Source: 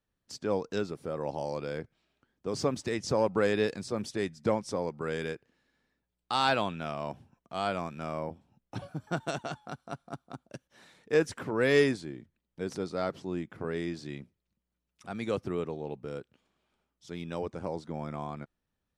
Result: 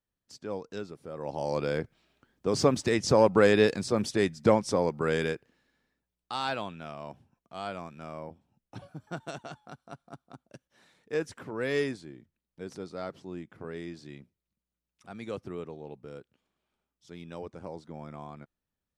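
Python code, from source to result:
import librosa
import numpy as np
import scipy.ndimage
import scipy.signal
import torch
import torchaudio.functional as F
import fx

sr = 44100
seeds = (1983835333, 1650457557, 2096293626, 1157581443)

y = fx.gain(x, sr, db=fx.line((1.09, -6.0), (1.58, 6.0), (5.17, 6.0), (6.41, -5.5)))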